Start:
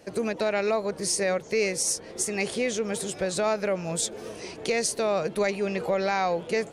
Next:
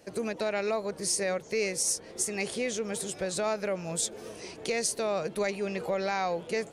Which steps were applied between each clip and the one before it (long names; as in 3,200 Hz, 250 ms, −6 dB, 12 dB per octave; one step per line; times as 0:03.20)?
high-shelf EQ 6,300 Hz +4.5 dB
level −4.5 dB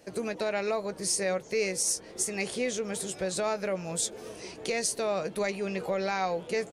double-tracking delay 16 ms −13 dB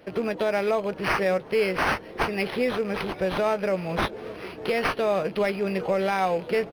loose part that buzzes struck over −42 dBFS, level −38 dBFS
linearly interpolated sample-rate reduction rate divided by 6×
level +6 dB